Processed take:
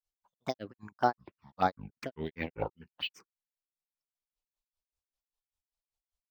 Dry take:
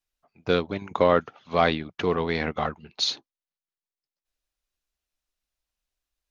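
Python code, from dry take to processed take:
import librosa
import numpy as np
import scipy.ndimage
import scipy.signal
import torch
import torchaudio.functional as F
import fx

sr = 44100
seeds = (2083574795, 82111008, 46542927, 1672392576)

y = fx.granulator(x, sr, seeds[0], grain_ms=153.0, per_s=5.1, spray_ms=35.0, spread_st=7)
y = fx.env_phaser(y, sr, low_hz=310.0, high_hz=2700.0, full_db=-23.0)
y = np.interp(np.arange(len(y)), np.arange(len(y))[::2], y[::2])
y = y * 10.0 ** (-3.5 / 20.0)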